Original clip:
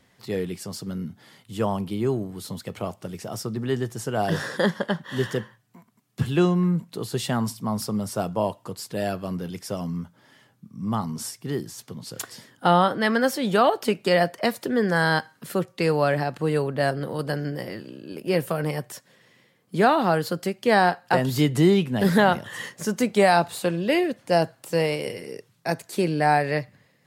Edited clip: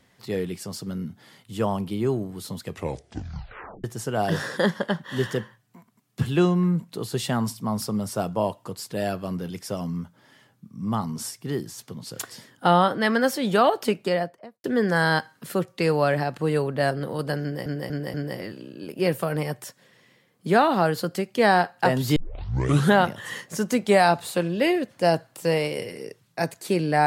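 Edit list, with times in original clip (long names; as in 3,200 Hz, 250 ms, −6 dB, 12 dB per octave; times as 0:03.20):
0:02.63: tape stop 1.21 s
0:13.82–0:14.64: fade out and dull
0:17.42: stutter 0.24 s, 4 plays
0:21.44: tape start 0.79 s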